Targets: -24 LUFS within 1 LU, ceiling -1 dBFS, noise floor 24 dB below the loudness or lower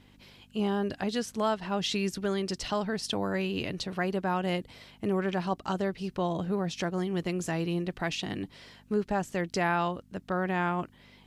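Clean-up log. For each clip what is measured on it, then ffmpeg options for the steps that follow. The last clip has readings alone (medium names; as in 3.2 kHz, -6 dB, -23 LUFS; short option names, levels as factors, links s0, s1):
hum 50 Hz; highest harmonic 250 Hz; hum level -59 dBFS; loudness -31.0 LUFS; peak level -16.5 dBFS; loudness target -24.0 LUFS
-> -af "bandreject=f=50:t=h:w=4,bandreject=f=100:t=h:w=4,bandreject=f=150:t=h:w=4,bandreject=f=200:t=h:w=4,bandreject=f=250:t=h:w=4"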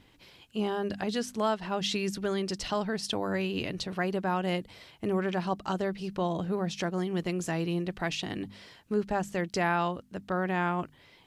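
hum not found; loudness -31.5 LUFS; peak level -16.5 dBFS; loudness target -24.0 LUFS
-> -af "volume=2.37"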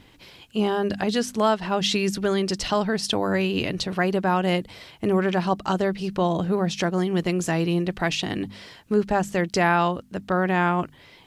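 loudness -24.0 LUFS; peak level -9.0 dBFS; noise floor -52 dBFS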